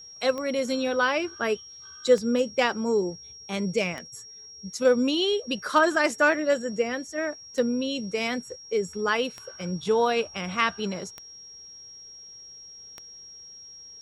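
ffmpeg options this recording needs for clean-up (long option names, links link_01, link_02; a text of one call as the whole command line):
ffmpeg -i in.wav -af "adeclick=threshold=4,bandreject=frequency=5600:width=30" out.wav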